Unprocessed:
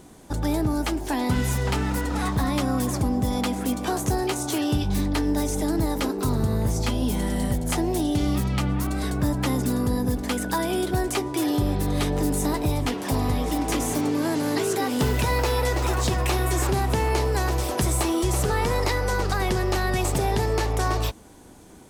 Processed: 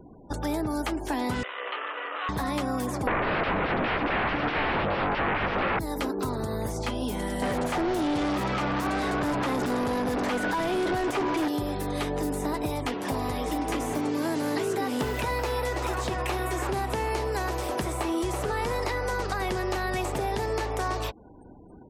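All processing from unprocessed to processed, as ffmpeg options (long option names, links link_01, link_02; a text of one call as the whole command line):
ffmpeg -i in.wav -filter_complex "[0:a]asettb=1/sr,asplit=3[link_01][link_02][link_03];[link_01]atrim=end=1.434[link_04];[link_02]atrim=start=1.43:end=2.29,asetpts=PTS-STARTPTS,afade=type=in:duration=0.004:curve=qsin,afade=type=out:start_time=0.856:duration=0.004:curve=qsin,asoftclip=type=hard:threshold=-29.5dB,highpass=frequency=480:width=0.5412,highpass=frequency=480:width=1.3066,equalizer=frequency=500:width_type=q:width=4:gain=3,equalizer=frequency=850:width_type=q:width=4:gain=-5,equalizer=frequency=1200:width_type=q:width=4:gain=10,equalizer=frequency=1800:width_type=q:width=4:gain=4,equalizer=frequency=2900:width_type=q:width=4:gain=9,lowpass=frequency=3200:width=0.5412,lowpass=frequency=3200:width=1.3066,asplit=2[link_05][link_06];[link_06]adelay=28,volume=-10.5dB[link_07];[link_05][link_07]amix=inputs=2:normalize=0,atrim=end_sample=37926[link_08];[link_03]atrim=start=2.286[link_09];[link_04][link_08]acrossfade=duration=0.004:curve1=hsin:curve2=qsin[link_10];[link_10][link_09]acrossfade=duration=0.004:curve1=qsin:curve2=hsin,asettb=1/sr,asplit=3[link_11][link_12][link_13];[link_11]atrim=end=3.074[link_14];[link_12]atrim=start=3.07:end=5.79,asetpts=PTS-STARTPTS,afade=type=in:duration=0.004:curve=qsin,afade=type=out:start_time=2.716:duration=0.004:curve=qsin,aeval=exprs='0.224*sin(PI/2*7.94*val(0)/0.224)':channel_layout=same,lowpass=frequency=2600:width=0.5412,lowpass=frequency=2600:width=1.3066[link_15];[link_13]atrim=start=5.786[link_16];[link_14][link_15]acrossfade=duration=0.004:curve1=hsin:curve2=qsin[link_17];[link_17][link_16]acrossfade=duration=0.004:curve1=qsin:curve2=hsin,asettb=1/sr,asplit=3[link_18][link_19][link_20];[link_18]atrim=end=7.424[link_21];[link_19]atrim=start=7.42:end=11.48,asetpts=PTS-STARTPTS,afade=type=in:duration=0.004:curve=qsin,afade=type=out:start_time=4.056:duration=0.004:curve=qsin,equalizer=frequency=9000:width=5:gain=-2.5,asplit=2[link_22][link_23];[link_23]highpass=frequency=720:poles=1,volume=34dB,asoftclip=type=tanh:threshold=-13dB[link_24];[link_22][link_24]amix=inputs=2:normalize=0,lowpass=frequency=1300:poles=1,volume=-6dB[link_25];[link_20]atrim=start=11.476[link_26];[link_21][link_25]acrossfade=duration=0.004:curve1=hsin:curve2=qsin[link_27];[link_27][link_26]acrossfade=duration=0.004:curve1=qsin:curve2=hsin,afftfilt=real='re*gte(hypot(re,im),0.00501)':imag='im*gte(hypot(re,im),0.00501)':win_size=1024:overlap=0.75,acrossover=split=310|3000[link_28][link_29][link_30];[link_28]acompressor=threshold=-34dB:ratio=4[link_31];[link_29]acompressor=threshold=-27dB:ratio=4[link_32];[link_30]acompressor=threshold=-43dB:ratio=4[link_33];[link_31][link_32][link_33]amix=inputs=3:normalize=0" out.wav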